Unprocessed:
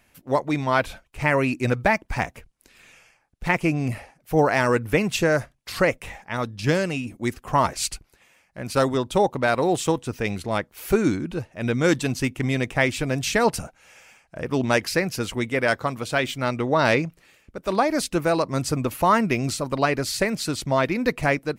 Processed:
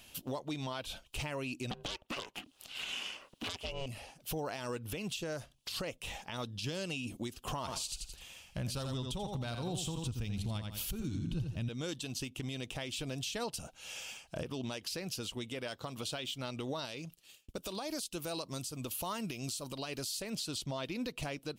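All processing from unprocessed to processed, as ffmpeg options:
ffmpeg -i in.wav -filter_complex "[0:a]asettb=1/sr,asplit=3[link_01][link_02][link_03];[link_01]atrim=end=1.714[link_04];[link_02]atrim=start=1.71:end=3.86,asetpts=PTS-STARTPTS,afade=type=in:duration=0.004:curve=qsin,afade=type=out:start_time=2.146:duration=0.004:curve=qsin,bass=frequency=250:gain=-14,treble=frequency=4000:gain=-9,aeval=exprs='val(0)*sin(2*PI*270*n/s)':channel_layout=same,aeval=exprs='0.447*sin(PI/2*4.47*val(0)/0.447)':channel_layout=same[link_05];[link_03]atrim=start=3.856[link_06];[link_04][link_05]acrossfade=duration=0.004:curve1=hsin:curve2=qsin[link_07];[link_07][link_06]acrossfade=duration=0.004:curve1=qsin:curve2=hsin,asettb=1/sr,asplit=3[link_08][link_09][link_10];[link_08]atrim=end=7.594[link_11];[link_09]atrim=start=7.59:end=11.69,asetpts=PTS-STARTPTS,afade=type=in:duration=0.004:curve=qsin,afade=type=out:start_time=4.096:duration=0.004:curve=qsin,asubboost=boost=11.5:cutoff=150,aecho=1:1:84|168|252:0.398|0.0955|0.0229,atrim=end_sample=180810[link_12];[link_10]atrim=start=11.686[link_13];[link_11][link_12]acrossfade=duration=0.004:curve1=hsin:curve2=qsin[link_14];[link_14][link_13]acrossfade=duration=0.004:curve1=qsin:curve2=hsin,asettb=1/sr,asplit=3[link_15][link_16][link_17];[link_15]atrim=end=16.604[link_18];[link_16]atrim=start=16.6:end=20.22,asetpts=PTS-STARTPTS,afade=type=in:duration=0.004:curve=qsin,afade=type=out:start_time=3.616:duration=0.004:curve=qsin,aemphasis=mode=production:type=cd,agate=range=-33dB:threshold=-45dB:ratio=3:release=100:detection=peak[link_19];[link_17]atrim=start=20.216[link_20];[link_18][link_19]acrossfade=duration=0.004:curve1=hsin:curve2=qsin[link_21];[link_21][link_20]acrossfade=duration=0.004:curve1=qsin:curve2=hsin,highshelf=frequency=2500:width_type=q:width=3:gain=6.5,acompressor=threshold=-28dB:ratio=6,alimiter=level_in=5.5dB:limit=-24dB:level=0:latency=1:release=355,volume=-5.5dB,volume=1dB" out.wav

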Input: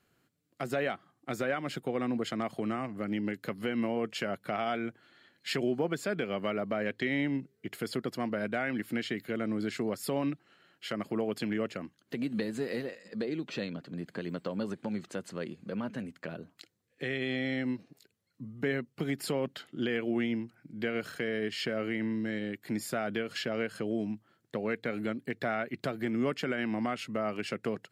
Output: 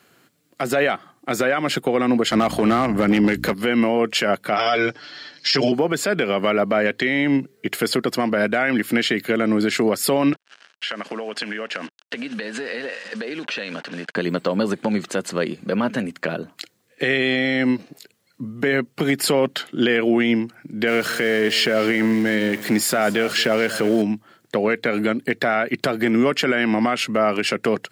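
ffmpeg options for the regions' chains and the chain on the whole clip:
ffmpeg -i in.wav -filter_complex "[0:a]asettb=1/sr,asplit=3[link_01][link_02][link_03];[link_01]atrim=end=2.314[link_04];[link_02]atrim=start=2.31:end=3.54,asetpts=PTS-STARTPTS,afade=type=in:duration=0.004:curve=qsin,afade=type=out:start_time=1.226:duration=0.004:curve=qsin,acontrast=80,aeval=exprs='val(0)+0.0126*(sin(2*PI*60*n/s)+sin(2*PI*2*60*n/s)/2+sin(2*PI*3*60*n/s)/3+sin(2*PI*4*60*n/s)/4+sin(2*PI*5*60*n/s)/5)':channel_layout=same,volume=20.5dB,asoftclip=hard,volume=-20.5dB[link_05];[link_03]atrim=start=3.536[link_06];[link_04][link_05]acrossfade=duration=0.004:curve1=hsin:curve2=qsin[link_07];[link_07][link_06]acrossfade=duration=0.004:curve1=qsin:curve2=hsin,asettb=1/sr,asplit=3[link_08][link_09][link_10];[link_08]atrim=end=4.564[link_11];[link_09]atrim=start=4.56:end=5.72,asetpts=PTS-STARTPTS,afade=type=in:duration=0.004:curve=qsin,afade=type=out:start_time=1.156:duration=0.004:curve=qsin,lowpass=frequency=5300:width_type=q:width=8.5,aecho=1:1:6.8:0.94,atrim=end_sample=51156[link_12];[link_10]atrim=start=5.716[link_13];[link_11][link_12]acrossfade=duration=0.004:curve1=hsin:curve2=qsin[link_14];[link_14][link_13]acrossfade=duration=0.004:curve1=qsin:curve2=hsin,asettb=1/sr,asplit=3[link_15][link_16][link_17];[link_15]atrim=end=10.334[link_18];[link_16]atrim=start=10.33:end=14.16,asetpts=PTS-STARTPTS,afade=type=in:duration=0.004:curve=qsin,afade=type=out:start_time=3.826:duration=0.004:curve=qsin,acrusher=bits=8:mix=0:aa=0.5,highpass=260,equalizer=frequency=350:width_type=q:width=4:gain=-7,equalizer=frequency=1600:width_type=q:width=4:gain=8,equalizer=frequency=2800:width_type=q:width=4:gain=6,equalizer=frequency=7300:width_type=q:width=4:gain=-5,lowpass=frequency=8100:width=0.5412,lowpass=frequency=8100:width=1.3066,acompressor=threshold=-40dB:ratio=12:attack=3.2:release=140:knee=1:detection=peak[link_19];[link_17]atrim=start=14.156[link_20];[link_18][link_19]acrossfade=duration=0.004:curve1=hsin:curve2=qsin[link_21];[link_21][link_20]acrossfade=duration=0.004:curve1=qsin:curve2=hsin,asettb=1/sr,asplit=3[link_22][link_23][link_24];[link_22]atrim=end=20.874[link_25];[link_23]atrim=start=20.87:end=24.02,asetpts=PTS-STARTPTS,afade=type=in:duration=0.004:curve=qsin,afade=type=out:start_time=3.146:duration=0.004:curve=qsin,aeval=exprs='val(0)+0.5*0.00473*sgn(val(0))':channel_layout=same,aecho=1:1:224:0.133,atrim=end_sample=138915[link_26];[link_24]atrim=start=24.016[link_27];[link_25][link_26]acrossfade=duration=0.004:curve1=hsin:curve2=qsin[link_28];[link_28][link_27]acrossfade=duration=0.004:curve1=qsin:curve2=hsin,highpass=110,lowshelf=frequency=260:gain=-7,alimiter=level_in=26dB:limit=-1dB:release=50:level=0:latency=1,volume=-8.5dB" out.wav

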